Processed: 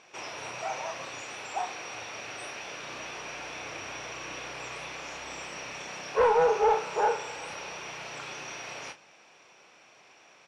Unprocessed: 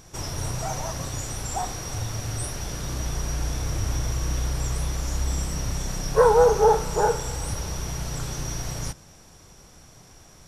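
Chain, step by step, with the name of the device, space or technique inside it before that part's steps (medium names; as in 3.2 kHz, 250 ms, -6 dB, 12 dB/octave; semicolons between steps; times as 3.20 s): intercom (band-pass 480–3600 Hz; peaking EQ 2.5 kHz +11 dB 0.43 oct; saturation -13.5 dBFS, distortion -17 dB; doubling 32 ms -9 dB); trim -2 dB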